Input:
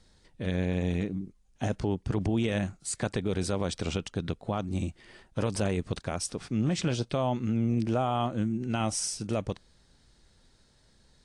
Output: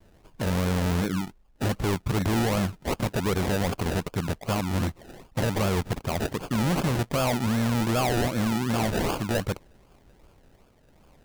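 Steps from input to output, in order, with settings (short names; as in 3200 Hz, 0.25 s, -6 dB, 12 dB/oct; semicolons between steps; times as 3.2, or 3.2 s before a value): rattling part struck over -27 dBFS, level -32 dBFS; expander -59 dBFS; low shelf 420 Hz -2.5 dB; decimation with a swept rate 32×, swing 60% 2.6 Hz; overloaded stage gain 29.5 dB; gain +8.5 dB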